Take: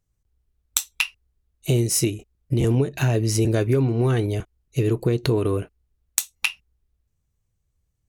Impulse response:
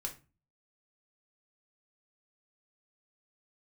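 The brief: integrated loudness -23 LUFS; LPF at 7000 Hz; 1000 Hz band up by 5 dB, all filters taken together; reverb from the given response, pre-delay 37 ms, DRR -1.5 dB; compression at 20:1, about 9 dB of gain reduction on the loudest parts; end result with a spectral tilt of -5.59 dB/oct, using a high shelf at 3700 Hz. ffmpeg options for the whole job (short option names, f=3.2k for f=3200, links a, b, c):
-filter_complex "[0:a]lowpass=7k,equalizer=f=1k:t=o:g=7,highshelf=f=3.7k:g=-6,acompressor=threshold=-24dB:ratio=20,asplit=2[a][b];[1:a]atrim=start_sample=2205,adelay=37[c];[b][c]afir=irnorm=-1:irlink=0,volume=2dB[d];[a][d]amix=inputs=2:normalize=0,volume=3.5dB"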